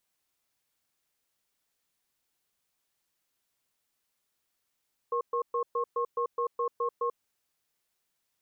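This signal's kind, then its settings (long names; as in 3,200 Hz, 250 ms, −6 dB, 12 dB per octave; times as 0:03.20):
tone pair in a cadence 475 Hz, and 1,080 Hz, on 0.09 s, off 0.12 s, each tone −29 dBFS 2.07 s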